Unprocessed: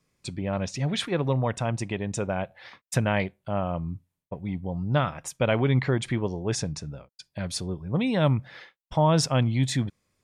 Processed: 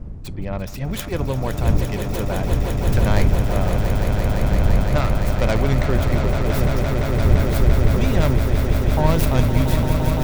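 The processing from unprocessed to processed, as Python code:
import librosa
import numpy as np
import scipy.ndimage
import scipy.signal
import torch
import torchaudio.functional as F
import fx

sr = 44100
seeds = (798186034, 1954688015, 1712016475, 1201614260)

y = fx.tracing_dist(x, sr, depth_ms=0.41)
y = fx.dmg_wind(y, sr, seeds[0], corner_hz=85.0, level_db=-23.0)
y = fx.echo_swell(y, sr, ms=171, loudest=8, wet_db=-8.5)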